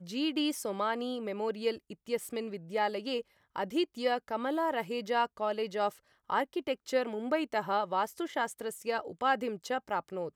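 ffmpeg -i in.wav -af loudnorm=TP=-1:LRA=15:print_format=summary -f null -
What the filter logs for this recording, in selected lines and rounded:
Input Integrated:    -33.3 LUFS
Input True Peak:     -15.5 dBTP
Input LRA:             1.4 LU
Input Threshold:     -43.4 LUFS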